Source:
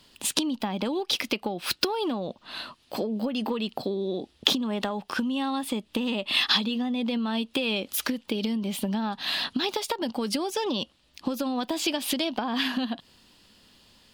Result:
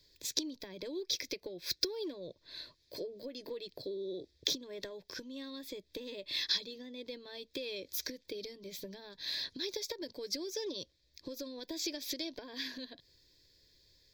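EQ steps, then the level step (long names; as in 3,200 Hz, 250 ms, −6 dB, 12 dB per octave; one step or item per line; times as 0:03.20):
dynamic equaliser 5,900 Hz, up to +5 dB, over −51 dBFS, Q 5.5
phaser with its sweep stopped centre 530 Hz, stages 4
phaser with its sweep stopped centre 2,900 Hz, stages 6
−4.5 dB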